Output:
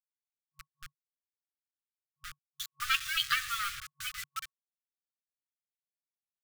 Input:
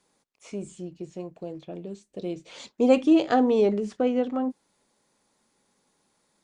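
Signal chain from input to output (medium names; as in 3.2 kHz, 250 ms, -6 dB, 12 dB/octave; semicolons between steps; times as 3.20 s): expander on every frequency bin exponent 3; hard clipper -24.5 dBFS, distortion -7 dB; bass shelf 190 Hz -10.5 dB; comb 5.9 ms, depth 38%; de-hum 141.4 Hz, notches 31; dynamic bell 3.2 kHz, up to +6 dB, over -54 dBFS, Q 1.1; delay 110 ms -22.5 dB; bit crusher 7-bit; FFT band-reject 140–1100 Hz; trim +6 dB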